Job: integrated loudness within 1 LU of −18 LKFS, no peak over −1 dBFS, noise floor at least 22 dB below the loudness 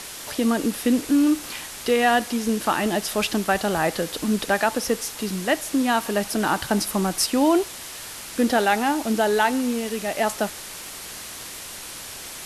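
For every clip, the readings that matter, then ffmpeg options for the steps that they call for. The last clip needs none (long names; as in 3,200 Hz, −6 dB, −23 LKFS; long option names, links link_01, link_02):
background noise floor −37 dBFS; target noise floor −45 dBFS; integrated loudness −22.5 LKFS; sample peak −6.0 dBFS; target loudness −18.0 LKFS
→ -af "afftdn=noise_reduction=8:noise_floor=-37"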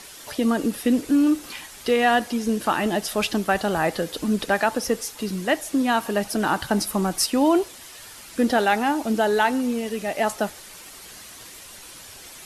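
background noise floor −43 dBFS; target noise floor −45 dBFS
→ -af "afftdn=noise_reduction=6:noise_floor=-43"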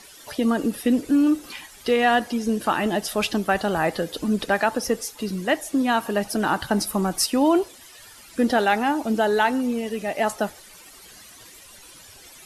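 background noise floor −47 dBFS; integrated loudness −23.0 LKFS; sample peak −6.5 dBFS; target loudness −18.0 LKFS
→ -af "volume=5dB"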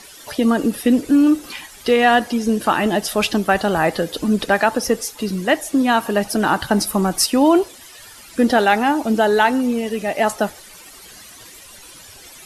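integrated loudness −18.0 LKFS; sample peak −1.5 dBFS; background noise floor −42 dBFS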